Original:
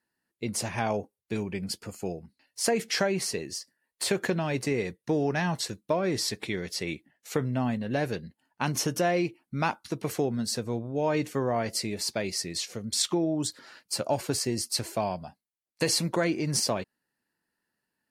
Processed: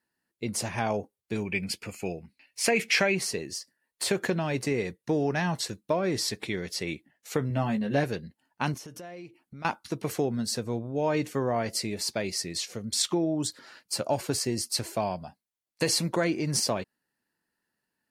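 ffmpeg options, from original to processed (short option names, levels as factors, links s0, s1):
-filter_complex "[0:a]asettb=1/sr,asplit=3[s0][s1][s2];[s0]atrim=end=1.454[s3];[s1]atrim=start=1.45:end=3.15,asetpts=PTS-STARTPTS,afade=t=in:d=0.004:c=qsin,afade=t=out:st=1.696:d=0.004:c=qsin,equalizer=f=2400:t=o:w=0.55:g=14[s4];[s2]atrim=start=3.146[s5];[s3][s4]acrossfade=d=0.004:c1=hsin:c2=qsin[s6];[s6][s5]acrossfade=d=0.004:c1=qsin:c2=hsin,asettb=1/sr,asplit=3[s7][s8][s9];[s7]atrim=end=7.494[s10];[s8]atrim=start=7.49:end=8.04,asetpts=PTS-STARTPTS,afade=t=in:d=0.004:c=qsin,afade=t=out:st=0.546:d=0.004:c=qsin,asplit=2[s11][s12];[s12]adelay=14,volume=0.708[s13];[s11][s13]amix=inputs=2:normalize=0,atrim=end_sample=24255[s14];[s9]atrim=start=8.036[s15];[s10][s14]acrossfade=d=0.004:c1=hsin:c2=qsin[s16];[s16][s15]acrossfade=d=0.004:c1=qsin:c2=hsin,asettb=1/sr,asplit=3[s17][s18][s19];[s17]atrim=end=8.744[s20];[s18]atrim=start=8.74:end=9.65,asetpts=PTS-STARTPTS,afade=t=in:d=0.004:c=qsin,afade=t=out:st=0.906:d=0.004:c=qsin,acompressor=threshold=0.00708:ratio=4:attack=3.2:release=140:knee=1:detection=peak[s21];[s19]atrim=start=9.646[s22];[s20][s21]acrossfade=d=0.004:c1=hsin:c2=qsin[s23];[s23][s22]acrossfade=d=0.004:c1=qsin:c2=hsin"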